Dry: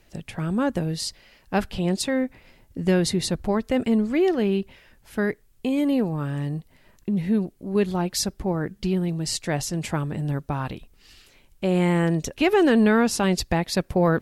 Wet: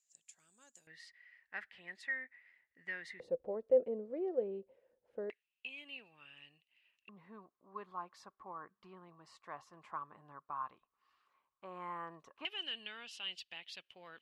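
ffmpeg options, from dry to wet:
-af "asetnsamples=n=441:p=0,asendcmd='0.87 bandpass f 1900;3.2 bandpass f 510;5.3 bandpass f 2700;7.09 bandpass f 1100;12.45 bandpass f 3000',bandpass=f=7100:t=q:w=12:csg=0"

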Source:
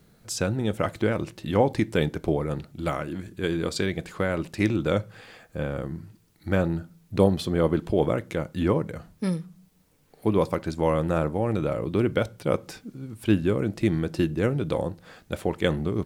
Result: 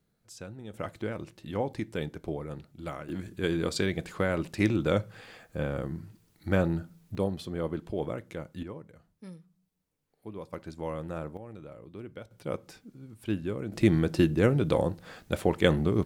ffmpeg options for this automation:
-af "asetnsamples=n=441:p=0,asendcmd='0.74 volume volume -10dB;3.09 volume volume -2dB;7.15 volume volume -10dB;8.63 volume volume -19dB;10.53 volume volume -12dB;11.37 volume volume -19.5dB;12.31 volume volume -9.5dB;13.72 volume volume 1dB',volume=0.141"

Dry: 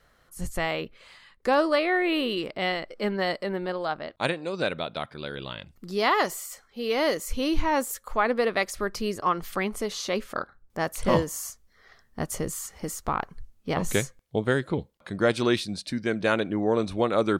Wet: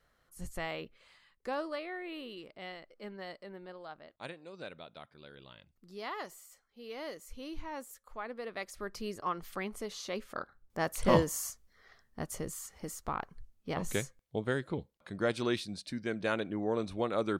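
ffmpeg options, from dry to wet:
-af "volume=1.88,afade=t=out:st=0.84:d=1.12:silence=0.421697,afade=t=in:st=8.41:d=0.6:silence=0.421697,afade=t=in:st=10.25:d=1.03:silence=0.398107,afade=t=out:st=11.28:d=0.96:silence=0.473151"

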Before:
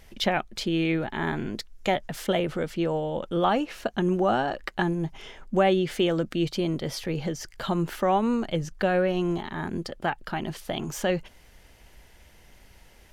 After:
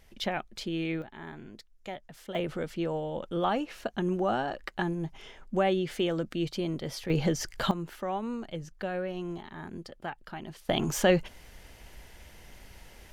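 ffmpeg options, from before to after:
-af "asetnsamples=n=441:p=0,asendcmd='1.02 volume volume -15dB;2.35 volume volume -5dB;7.1 volume volume 3dB;7.71 volume volume -10dB;10.69 volume volume 3dB',volume=0.447"

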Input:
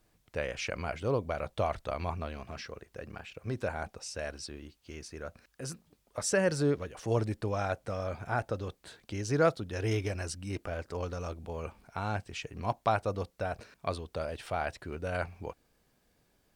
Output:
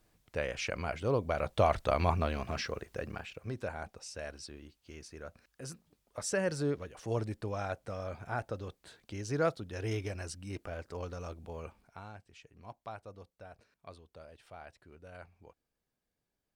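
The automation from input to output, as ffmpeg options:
-af "volume=2,afade=t=in:st=1.13:d=0.81:silence=0.473151,afade=t=out:st=2.85:d=0.68:silence=0.298538,afade=t=out:st=11.57:d=0.56:silence=0.251189"

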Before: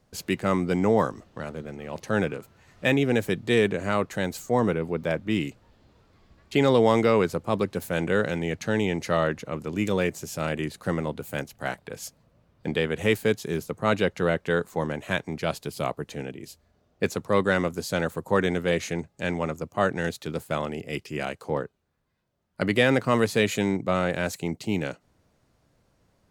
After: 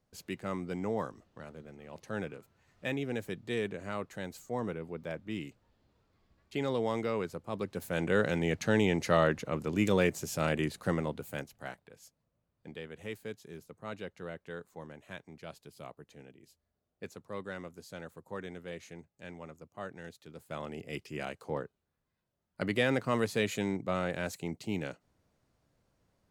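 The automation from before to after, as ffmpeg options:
-af "volume=2.66,afade=t=in:st=7.51:d=0.95:silence=0.298538,afade=t=out:st=10.63:d=0.94:silence=0.375837,afade=t=out:st=11.57:d=0.37:silence=0.398107,afade=t=in:st=20.35:d=0.47:silence=0.298538"

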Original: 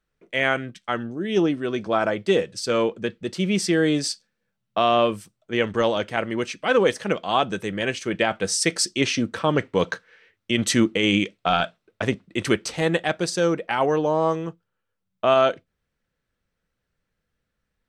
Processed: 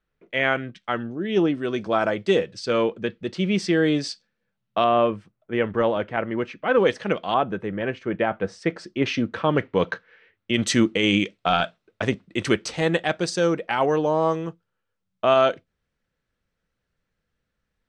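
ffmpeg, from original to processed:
-af "asetnsamples=n=441:p=0,asendcmd='1.55 lowpass f 7500;2.39 lowpass f 4400;4.84 lowpass f 2000;6.78 lowpass f 4100;7.34 lowpass f 1600;9.06 lowpass f 3300;10.54 lowpass f 7500',lowpass=3900"

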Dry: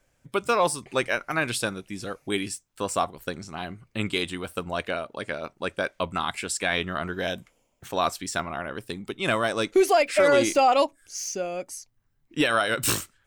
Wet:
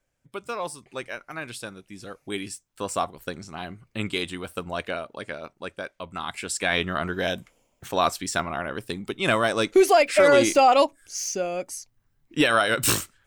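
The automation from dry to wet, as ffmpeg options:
-af "volume=3.35,afade=t=in:st=1.65:d=1.33:silence=0.398107,afade=t=out:st=4.96:d=1.07:silence=0.398107,afade=t=in:st=6.03:d=0.77:silence=0.266073"

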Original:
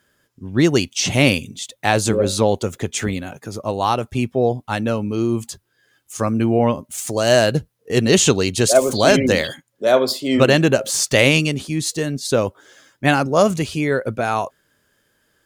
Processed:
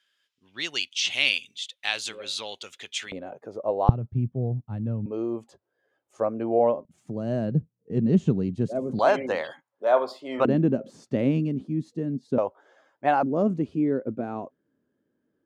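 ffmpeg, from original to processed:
-af "asetnsamples=n=441:p=0,asendcmd='3.12 bandpass f 560;3.89 bandpass f 130;5.06 bandpass f 590;6.85 bandpass f 180;8.99 bandpass f 900;10.45 bandpass f 230;12.38 bandpass f 740;13.23 bandpass f 270',bandpass=f=3200:t=q:w=2.1:csg=0"

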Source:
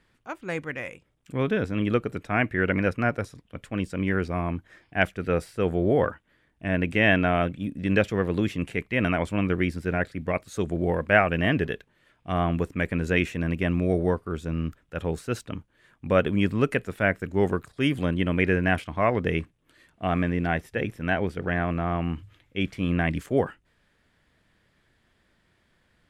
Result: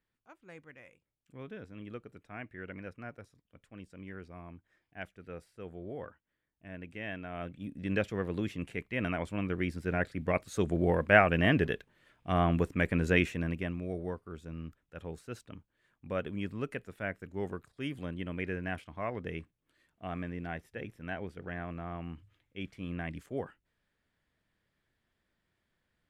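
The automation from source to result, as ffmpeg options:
-af "volume=0.75,afade=t=in:st=7.29:d=0.47:silence=0.281838,afade=t=in:st=9.51:d=0.91:silence=0.473151,afade=t=out:st=13.13:d=0.64:silence=0.281838"

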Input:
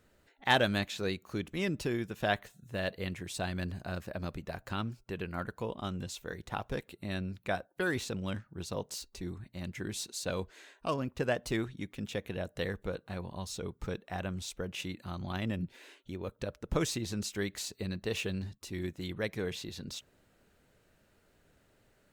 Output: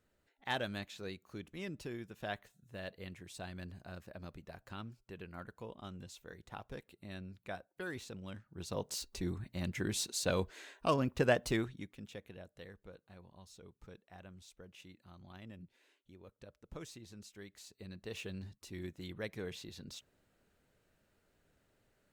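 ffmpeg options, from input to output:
-af "volume=3.98,afade=t=in:st=8.39:d=0.73:silence=0.237137,afade=t=out:st=11.33:d=0.6:silence=0.251189,afade=t=out:st=11.93:d=0.66:silence=0.446684,afade=t=in:st=17.55:d=1:silence=0.316228"

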